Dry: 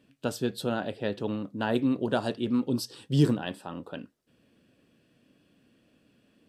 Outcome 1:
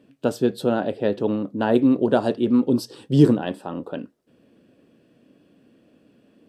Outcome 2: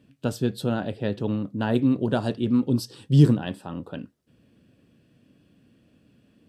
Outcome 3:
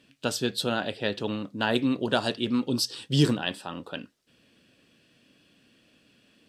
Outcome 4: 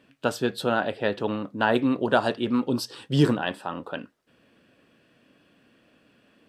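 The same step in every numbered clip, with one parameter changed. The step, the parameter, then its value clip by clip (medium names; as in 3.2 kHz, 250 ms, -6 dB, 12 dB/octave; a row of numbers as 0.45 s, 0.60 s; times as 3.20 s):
peaking EQ, frequency: 400 Hz, 88 Hz, 4.2 kHz, 1.3 kHz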